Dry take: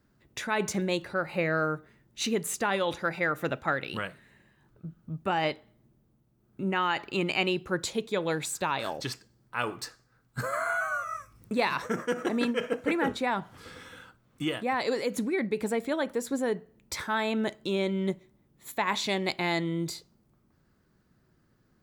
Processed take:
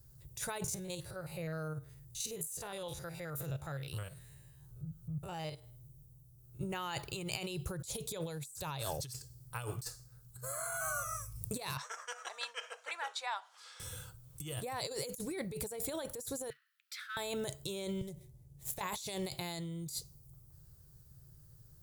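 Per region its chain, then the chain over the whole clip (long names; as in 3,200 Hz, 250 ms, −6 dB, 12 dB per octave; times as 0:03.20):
0:00.64–0:06.61: spectrum averaged block by block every 50 ms + downward compressor 1.5 to 1, threshold −53 dBFS
0:11.77–0:13.80: high-pass filter 860 Hz 24 dB per octave + high-frequency loss of the air 140 metres
0:16.50–0:17.17: mu-law and A-law mismatch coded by mu + Butterworth high-pass 1,300 Hz 72 dB per octave + high-frequency loss of the air 380 metres
0:18.01–0:18.81: running median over 9 samples + parametric band 1,200 Hz −6 dB 0.72 octaves + downward compressor 12 to 1, threshold −36 dBFS
whole clip: drawn EQ curve 140 Hz 0 dB, 220 Hz −26 dB, 460 Hz −14 dB, 2,000 Hz −21 dB, 10,000 Hz +6 dB; compressor whose output falls as the input rises −48 dBFS, ratio −1; level +8 dB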